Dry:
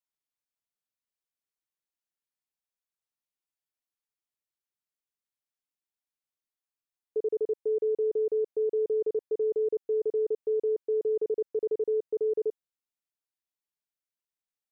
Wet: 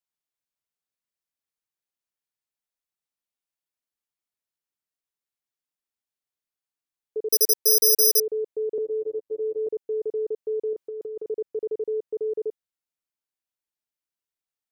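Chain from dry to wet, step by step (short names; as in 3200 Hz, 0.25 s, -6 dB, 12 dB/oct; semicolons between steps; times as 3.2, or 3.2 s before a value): 7.31–8.2 careless resampling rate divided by 8×, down filtered, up zero stuff; 8.78–9.67 robotiser 109 Hz; 10.73–11.29 negative-ratio compressor -33 dBFS, ratio -1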